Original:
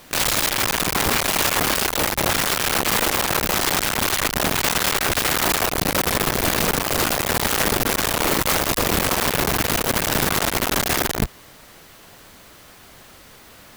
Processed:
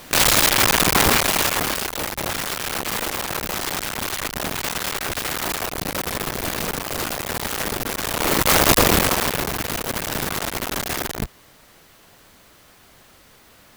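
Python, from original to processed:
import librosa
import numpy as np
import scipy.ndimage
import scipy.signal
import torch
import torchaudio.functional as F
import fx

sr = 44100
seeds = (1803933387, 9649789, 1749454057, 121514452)

y = fx.gain(x, sr, db=fx.line((1.01, 4.5), (1.91, -5.5), (7.97, -5.5), (8.71, 7.0), (9.52, -5.0)))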